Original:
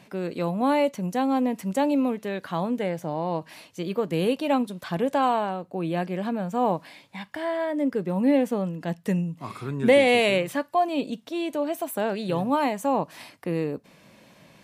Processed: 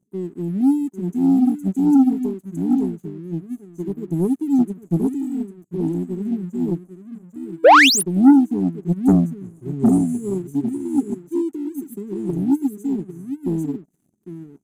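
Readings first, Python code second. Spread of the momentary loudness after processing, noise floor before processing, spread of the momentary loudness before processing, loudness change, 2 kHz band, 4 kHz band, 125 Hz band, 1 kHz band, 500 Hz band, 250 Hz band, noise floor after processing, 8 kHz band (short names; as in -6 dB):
18 LU, -55 dBFS, 10 LU, +6.5 dB, +8.0 dB, +8.5 dB, +6.5 dB, +3.5 dB, -0.5 dB, +9.0 dB, -59 dBFS, +14.0 dB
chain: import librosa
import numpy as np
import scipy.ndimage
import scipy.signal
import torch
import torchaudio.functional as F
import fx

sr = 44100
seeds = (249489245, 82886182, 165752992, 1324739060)

p1 = fx.brickwall_bandstop(x, sr, low_hz=430.0, high_hz=6000.0)
p2 = fx.low_shelf(p1, sr, hz=79.0, db=-6.0)
p3 = p2 + 10.0 ** (-5.5 / 20.0) * np.pad(p2, (int(801 * sr / 1000.0), 0))[:len(p2)]
p4 = fx.spec_paint(p3, sr, seeds[0], shape='rise', start_s=7.64, length_s=0.39, low_hz=430.0, high_hz=12000.0, level_db=-18.0)
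p5 = 10.0 ** (-14.5 / 20.0) * np.tanh(p4 / 10.0 ** (-14.5 / 20.0))
p6 = p4 + (p5 * librosa.db_to_amplitude(-11.0))
p7 = fx.leveller(p6, sr, passes=2)
p8 = fx.high_shelf(p7, sr, hz=3200.0, db=-6.0)
p9 = fx.upward_expand(p8, sr, threshold_db=-27.0, expansion=2.5)
y = p9 * librosa.db_to_amplitude(6.5)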